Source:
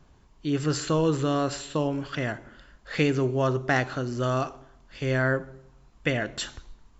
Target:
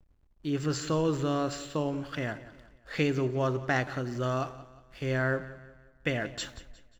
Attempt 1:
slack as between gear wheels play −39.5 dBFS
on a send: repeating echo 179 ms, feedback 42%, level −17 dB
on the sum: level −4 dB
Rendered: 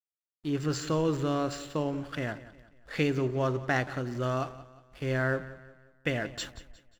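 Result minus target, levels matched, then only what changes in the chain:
slack as between gear wheels: distortion +7 dB
change: slack as between gear wheels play −47.5 dBFS

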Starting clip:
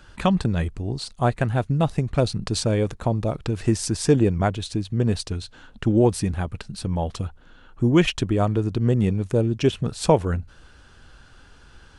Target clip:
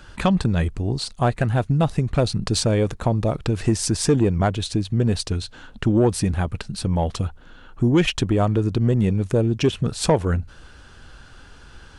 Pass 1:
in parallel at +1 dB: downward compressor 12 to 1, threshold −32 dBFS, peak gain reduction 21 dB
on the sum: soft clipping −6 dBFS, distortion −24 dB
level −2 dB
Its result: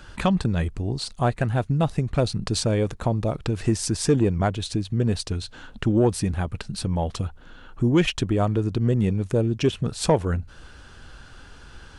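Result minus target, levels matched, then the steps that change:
downward compressor: peak gain reduction +11 dB
change: downward compressor 12 to 1, threshold −20 dBFS, peak gain reduction 10 dB

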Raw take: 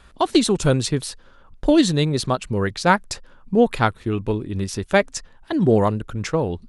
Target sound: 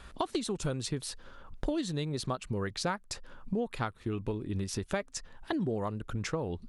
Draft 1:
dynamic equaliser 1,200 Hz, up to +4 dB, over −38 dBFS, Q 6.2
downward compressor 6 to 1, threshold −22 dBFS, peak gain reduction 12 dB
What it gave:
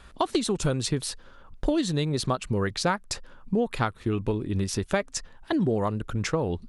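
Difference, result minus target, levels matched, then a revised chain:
downward compressor: peak gain reduction −7.5 dB
dynamic equaliser 1,200 Hz, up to +4 dB, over −38 dBFS, Q 6.2
downward compressor 6 to 1, threshold −31 dBFS, peak gain reduction 19.5 dB

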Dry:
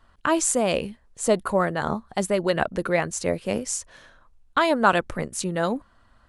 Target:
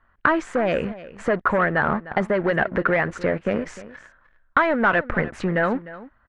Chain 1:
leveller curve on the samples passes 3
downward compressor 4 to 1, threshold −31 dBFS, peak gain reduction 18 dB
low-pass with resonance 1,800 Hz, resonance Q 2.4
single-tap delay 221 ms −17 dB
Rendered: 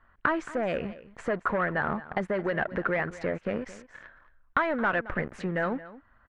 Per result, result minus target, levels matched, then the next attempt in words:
downward compressor: peak gain reduction +7.5 dB; echo 82 ms early
leveller curve on the samples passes 3
downward compressor 4 to 1, threshold −21 dBFS, peak gain reduction 10.5 dB
low-pass with resonance 1,800 Hz, resonance Q 2.4
single-tap delay 221 ms −17 dB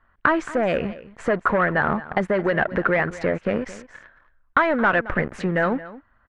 echo 82 ms early
leveller curve on the samples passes 3
downward compressor 4 to 1, threshold −21 dBFS, peak gain reduction 10.5 dB
low-pass with resonance 1,800 Hz, resonance Q 2.4
single-tap delay 303 ms −17 dB

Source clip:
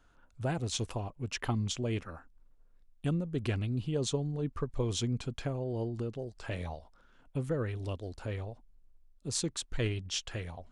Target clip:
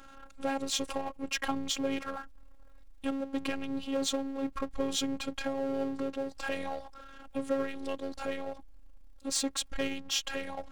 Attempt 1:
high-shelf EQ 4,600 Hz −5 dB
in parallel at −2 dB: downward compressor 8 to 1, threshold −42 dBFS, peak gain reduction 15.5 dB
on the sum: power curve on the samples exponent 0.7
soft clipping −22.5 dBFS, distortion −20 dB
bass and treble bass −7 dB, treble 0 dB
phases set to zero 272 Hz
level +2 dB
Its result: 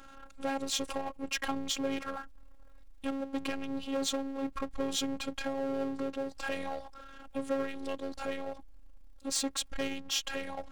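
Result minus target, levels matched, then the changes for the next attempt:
soft clipping: distortion +16 dB
change: soft clipping −13.5 dBFS, distortion −36 dB

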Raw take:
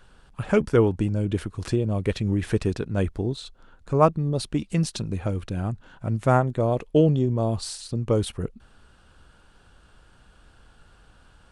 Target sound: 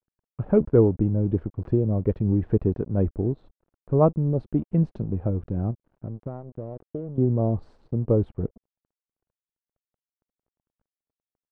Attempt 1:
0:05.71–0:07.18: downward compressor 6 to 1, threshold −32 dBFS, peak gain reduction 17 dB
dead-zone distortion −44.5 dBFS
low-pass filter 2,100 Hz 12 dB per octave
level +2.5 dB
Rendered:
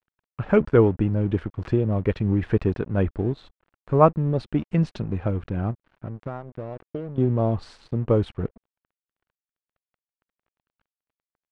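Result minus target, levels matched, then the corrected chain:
2,000 Hz band +15.0 dB
0:05.71–0:07.18: downward compressor 6 to 1, threshold −32 dBFS, peak gain reduction 17 dB
dead-zone distortion −44.5 dBFS
low-pass filter 610 Hz 12 dB per octave
level +2.5 dB

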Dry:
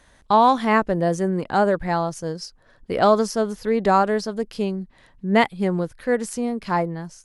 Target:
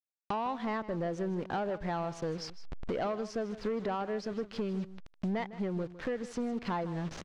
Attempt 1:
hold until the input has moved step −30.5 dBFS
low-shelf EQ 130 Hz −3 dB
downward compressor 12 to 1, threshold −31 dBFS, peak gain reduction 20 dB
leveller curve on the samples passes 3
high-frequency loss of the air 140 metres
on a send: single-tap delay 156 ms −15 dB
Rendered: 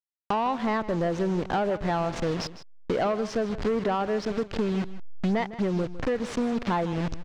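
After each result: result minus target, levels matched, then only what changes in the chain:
downward compressor: peak gain reduction −8.5 dB; hold until the input has moved: distortion +9 dB
change: downward compressor 12 to 1, threshold −40 dBFS, peak gain reduction 28.5 dB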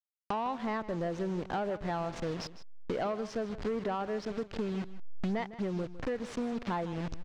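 hold until the input has moved: distortion +9 dB
change: hold until the input has moved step −39.5 dBFS

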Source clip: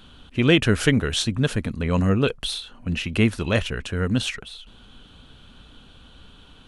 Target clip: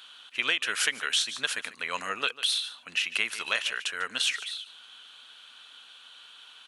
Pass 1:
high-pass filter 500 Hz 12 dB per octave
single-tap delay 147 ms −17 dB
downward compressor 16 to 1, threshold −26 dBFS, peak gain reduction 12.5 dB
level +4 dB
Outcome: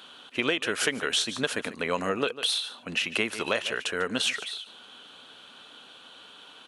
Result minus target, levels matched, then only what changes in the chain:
500 Hz band +12.0 dB
change: high-pass filter 1,400 Hz 12 dB per octave

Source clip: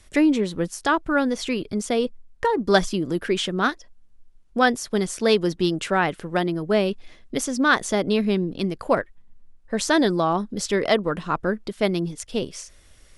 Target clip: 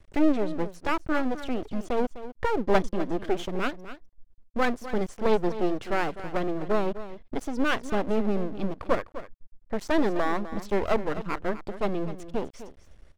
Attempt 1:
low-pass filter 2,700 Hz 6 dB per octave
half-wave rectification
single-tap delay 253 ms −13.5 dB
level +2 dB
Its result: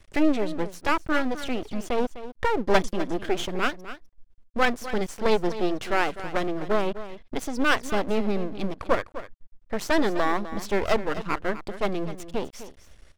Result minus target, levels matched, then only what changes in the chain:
2,000 Hz band +3.0 dB
change: low-pass filter 840 Hz 6 dB per octave

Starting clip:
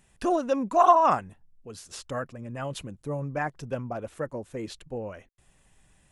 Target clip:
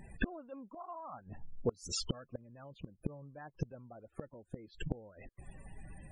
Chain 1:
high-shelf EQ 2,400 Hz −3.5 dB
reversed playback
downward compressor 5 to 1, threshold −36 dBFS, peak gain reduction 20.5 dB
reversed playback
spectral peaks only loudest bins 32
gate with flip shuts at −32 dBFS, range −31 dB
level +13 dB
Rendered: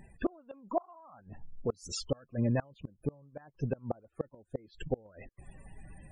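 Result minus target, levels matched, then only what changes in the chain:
downward compressor: peak gain reduction +8 dB
change: downward compressor 5 to 1, threshold −26 dBFS, peak gain reduction 12.5 dB

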